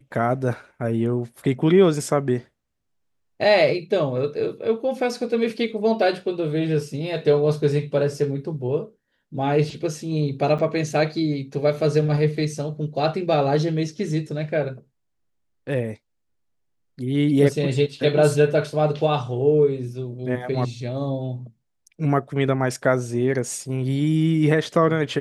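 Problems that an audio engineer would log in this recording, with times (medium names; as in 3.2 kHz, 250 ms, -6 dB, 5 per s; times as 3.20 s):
10.58–10.59 s: dropout 6.7 ms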